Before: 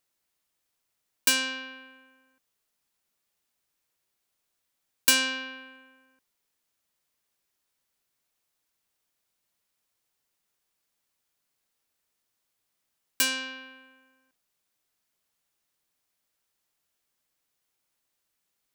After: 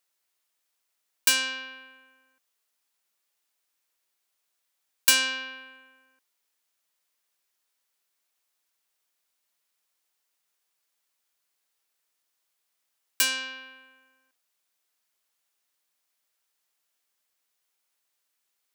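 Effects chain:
high-pass filter 640 Hz 6 dB per octave
level +1.5 dB

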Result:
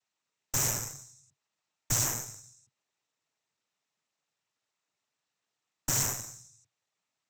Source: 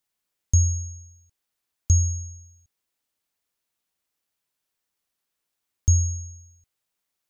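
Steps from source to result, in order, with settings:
brickwall limiter −15 dBFS, peak gain reduction 6.5 dB
cochlear-implant simulation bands 12
harmonic generator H 8 −12 dB, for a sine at −16.5 dBFS

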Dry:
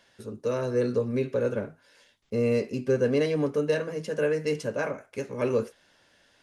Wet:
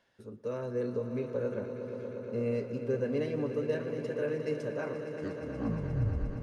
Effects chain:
turntable brake at the end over 1.63 s
high-shelf EQ 2,800 Hz −9.5 dB
echo that builds up and dies away 118 ms, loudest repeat 5, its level −13 dB
level −7.5 dB

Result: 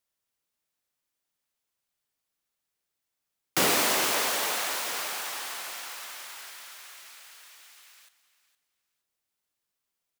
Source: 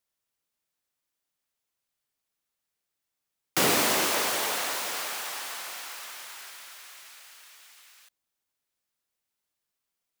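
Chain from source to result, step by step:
0:03.64–0:04.87: low-shelf EQ 270 Hz −6.5 dB
repeating echo 464 ms, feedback 21%, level −15 dB

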